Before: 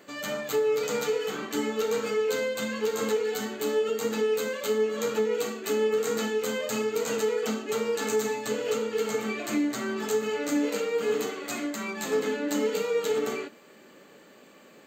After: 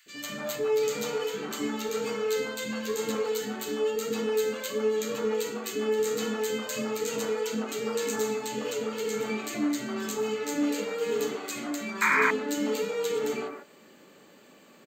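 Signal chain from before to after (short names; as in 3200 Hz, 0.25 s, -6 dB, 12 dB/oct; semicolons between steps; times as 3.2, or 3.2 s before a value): three bands offset in time highs, lows, mids 60/150 ms, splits 490/1700 Hz; painted sound noise, 12.01–12.31, 900–2500 Hz -23 dBFS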